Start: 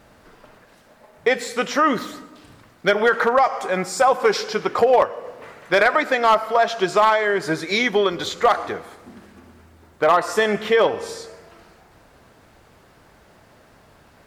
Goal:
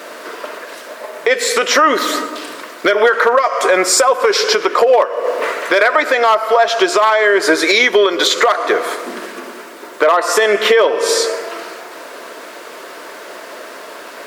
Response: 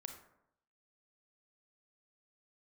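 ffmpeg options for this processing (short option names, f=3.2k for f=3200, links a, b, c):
-af "highpass=f=340:w=0.5412,highpass=f=340:w=1.3066,acompressor=threshold=-30dB:ratio=6,asuperstop=centerf=800:order=4:qfactor=6,alimiter=level_in=23dB:limit=-1dB:release=50:level=0:latency=1,volume=-1dB"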